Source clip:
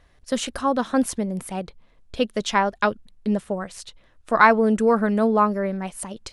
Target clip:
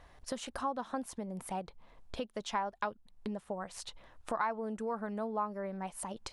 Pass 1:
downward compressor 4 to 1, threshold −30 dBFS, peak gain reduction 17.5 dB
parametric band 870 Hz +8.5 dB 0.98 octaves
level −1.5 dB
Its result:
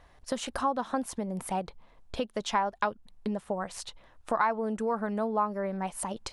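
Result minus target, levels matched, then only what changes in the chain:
downward compressor: peak gain reduction −7 dB
change: downward compressor 4 to 1, threshold −39 dBFS, peak gain reduction 24.5 dB

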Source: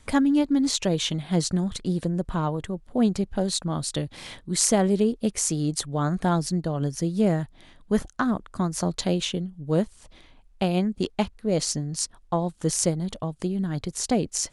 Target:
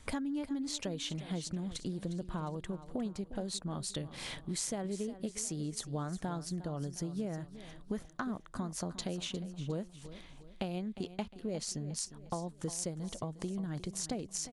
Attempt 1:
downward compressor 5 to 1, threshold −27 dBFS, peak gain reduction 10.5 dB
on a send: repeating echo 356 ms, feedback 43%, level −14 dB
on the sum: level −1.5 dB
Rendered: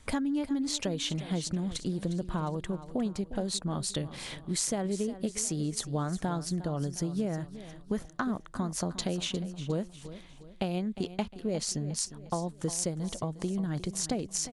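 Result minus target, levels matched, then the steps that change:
downward compressor: peak gain reduction −6 dB
change: downward compressor 5 to 1, threshold −34.5 dBFS, peak gain reduction 16.5 dB

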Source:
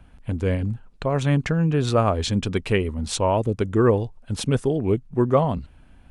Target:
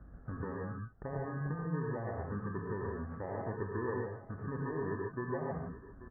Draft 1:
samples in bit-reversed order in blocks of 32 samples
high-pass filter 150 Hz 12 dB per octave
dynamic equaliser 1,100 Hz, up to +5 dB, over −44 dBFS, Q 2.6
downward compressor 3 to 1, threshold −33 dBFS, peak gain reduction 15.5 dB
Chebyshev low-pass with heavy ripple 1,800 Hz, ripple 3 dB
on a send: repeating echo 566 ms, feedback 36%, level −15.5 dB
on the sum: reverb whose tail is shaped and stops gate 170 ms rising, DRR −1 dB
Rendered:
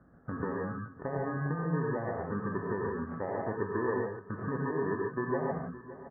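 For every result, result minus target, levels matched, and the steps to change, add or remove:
echo 269 ms early; downward compressor: peak gain reduction −5.5 dB; 125 Hz band −3.0 dB
change: repeating echo 835 ms, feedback 36%, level −15.5 dB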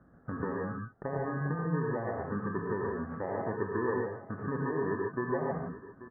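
downward compressor: peak gain reduction −5.5 dB; 125 Hz band −3.0 dB
change: downward compressor 3 to 1, threshold −41.5 dBFS, peak gain reduction 21 dB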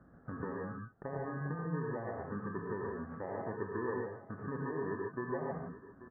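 125 Hz band −3.0 dB
change: high-pass filter 39 Hz 12 dB per octave

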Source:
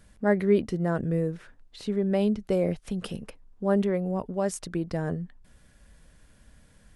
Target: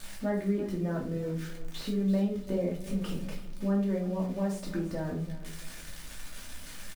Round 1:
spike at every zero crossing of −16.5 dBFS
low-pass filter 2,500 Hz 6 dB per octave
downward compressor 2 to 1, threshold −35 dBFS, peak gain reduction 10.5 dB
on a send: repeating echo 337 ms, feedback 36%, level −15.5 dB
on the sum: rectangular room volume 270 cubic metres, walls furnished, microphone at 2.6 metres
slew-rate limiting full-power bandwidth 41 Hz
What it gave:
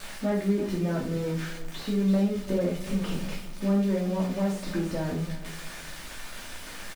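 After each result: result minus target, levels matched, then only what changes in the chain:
spike at every zero crossing: distortion +10 dB; downward compressor: peak gain reduction −3.5 dB
change: spike at every zero crossing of −26.5 dBFS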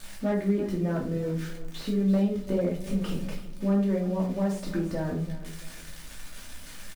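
downward compressor: peak gain reduction −4 dB
change: downward compressor 2 to 1, threshold −42.5 dBFS, peak gain reduction 14.5 dB

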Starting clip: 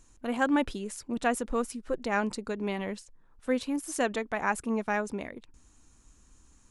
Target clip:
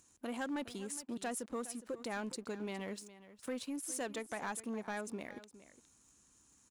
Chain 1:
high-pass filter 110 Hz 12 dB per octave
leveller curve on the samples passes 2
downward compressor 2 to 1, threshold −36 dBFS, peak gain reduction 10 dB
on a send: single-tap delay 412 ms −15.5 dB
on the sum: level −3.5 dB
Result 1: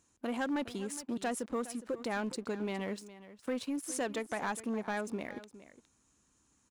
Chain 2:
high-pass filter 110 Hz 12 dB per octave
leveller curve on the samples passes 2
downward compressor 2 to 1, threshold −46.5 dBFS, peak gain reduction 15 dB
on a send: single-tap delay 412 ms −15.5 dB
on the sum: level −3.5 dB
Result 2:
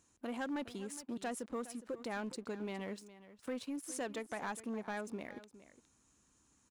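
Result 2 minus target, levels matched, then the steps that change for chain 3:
8,000 Hz band −4.0 dB
add after high-pass filter: high-shelf EQ 5,200 Hz +8.5 dB

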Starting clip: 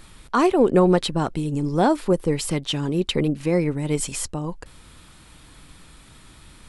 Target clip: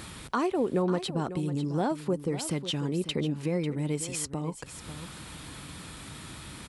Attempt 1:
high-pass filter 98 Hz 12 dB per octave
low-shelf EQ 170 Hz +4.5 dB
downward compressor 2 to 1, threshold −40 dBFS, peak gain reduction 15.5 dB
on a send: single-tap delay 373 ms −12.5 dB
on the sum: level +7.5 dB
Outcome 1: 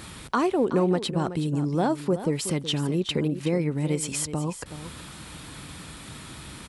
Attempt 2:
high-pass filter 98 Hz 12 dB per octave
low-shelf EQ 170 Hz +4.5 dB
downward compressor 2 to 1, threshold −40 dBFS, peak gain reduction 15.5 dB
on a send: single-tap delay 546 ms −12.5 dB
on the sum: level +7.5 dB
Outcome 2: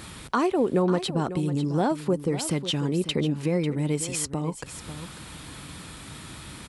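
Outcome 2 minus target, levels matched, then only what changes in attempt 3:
downward compressor: peak gain reduction −4.5 dB
change: downward compressor 2 to 1, threshold −48.5 dBFS, peak gain reduction 20 dB

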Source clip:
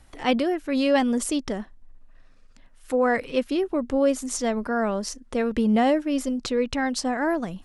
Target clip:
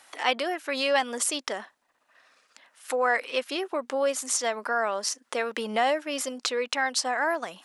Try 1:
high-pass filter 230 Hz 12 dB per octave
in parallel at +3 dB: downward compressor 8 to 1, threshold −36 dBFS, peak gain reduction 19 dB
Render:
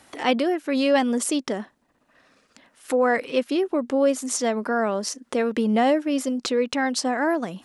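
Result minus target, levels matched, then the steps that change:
250 Hz band +10.0 dB
change: high-pass filter 760 Hz 12 dB per octave

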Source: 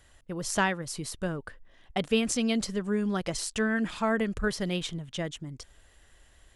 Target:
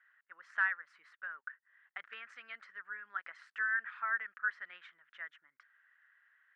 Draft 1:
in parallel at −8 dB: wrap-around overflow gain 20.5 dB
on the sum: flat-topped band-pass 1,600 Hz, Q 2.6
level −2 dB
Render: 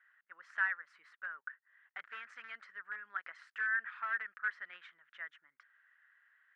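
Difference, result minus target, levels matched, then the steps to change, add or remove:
wrap-around overflow: distortion +14 dB
change: wrap-around overflow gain 14.5 dB

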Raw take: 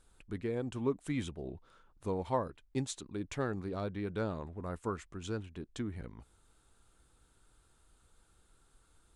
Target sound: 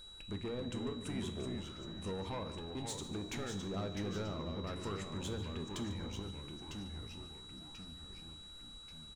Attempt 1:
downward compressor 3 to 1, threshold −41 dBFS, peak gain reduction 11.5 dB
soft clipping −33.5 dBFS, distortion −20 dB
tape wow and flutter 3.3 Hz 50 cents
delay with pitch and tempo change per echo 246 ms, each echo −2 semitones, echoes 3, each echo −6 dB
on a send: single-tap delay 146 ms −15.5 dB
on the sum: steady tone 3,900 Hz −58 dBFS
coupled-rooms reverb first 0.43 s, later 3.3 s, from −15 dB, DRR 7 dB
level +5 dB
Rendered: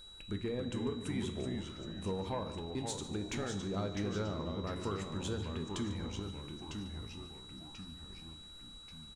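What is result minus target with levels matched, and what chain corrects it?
soft clipping: distortion −10 dB
downward compressor 3 to 1, threshold −41 dBFS, peak gain reduction 11.5 dB
soft clipping −42 dBFS, distortion −10 dB
tape wow and flutter 3.3 Hz 50 cents
delay with pitch and tempo change per echo 246 ms, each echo −2 semitones, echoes 3, each echo −6 dB
on a send: single-tap delay 146 ms −15.5 dB
on the sum: steady tone 3,900 Hz −58 dBFS
coupled-rooms reverb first 0.43 s, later 3.3 s, from −15 dB, DRR 7 dB
level +5 dB

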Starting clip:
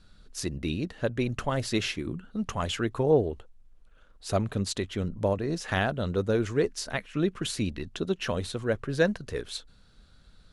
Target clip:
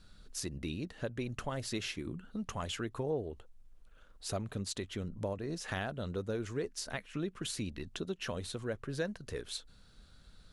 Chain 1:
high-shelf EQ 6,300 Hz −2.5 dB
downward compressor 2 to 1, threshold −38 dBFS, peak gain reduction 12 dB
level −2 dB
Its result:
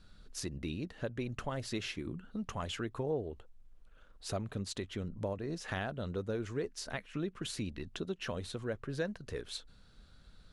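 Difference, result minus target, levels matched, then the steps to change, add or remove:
8,000 Hz band −3.0 dB
change: high-shelf EQ 6,300 Hz +5 dB

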